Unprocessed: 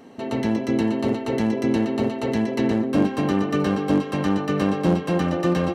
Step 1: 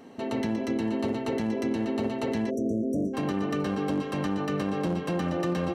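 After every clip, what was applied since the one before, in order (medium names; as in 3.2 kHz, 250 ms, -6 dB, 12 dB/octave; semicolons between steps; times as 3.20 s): de-hum 65.6 Hz, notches 2; spectral selection erased 2.50–3.14 s, 700–5600 Hz; peak limiter -17.5 dBFS, peak gain reduction 10 dB; trim -2.5 dB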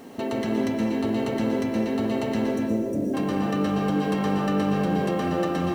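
in parallel at -1.5 dB: compressor with a negative ratio -33 dBFS, ratio -1; on the sum: bit crusher 9-bit; algorithmic reverb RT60 1.7 s, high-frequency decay 0.6×, pre-delay 90 ms, DRR 0.5 dB; trim -2.5 dB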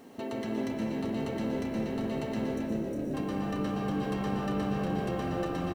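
frequency-shifting echo 388 ms, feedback 42%, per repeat -69 Hz, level -9 dB; trim -8 dB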